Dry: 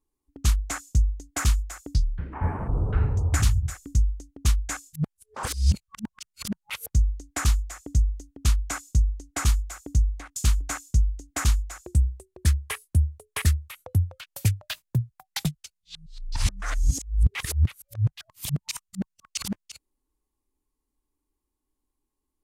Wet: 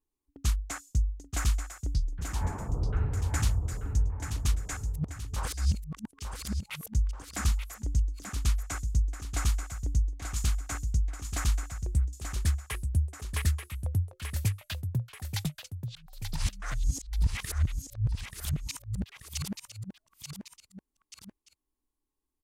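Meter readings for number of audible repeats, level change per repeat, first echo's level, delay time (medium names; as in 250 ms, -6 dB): 2, -5.5 dB, -7.0 dB, 884 ms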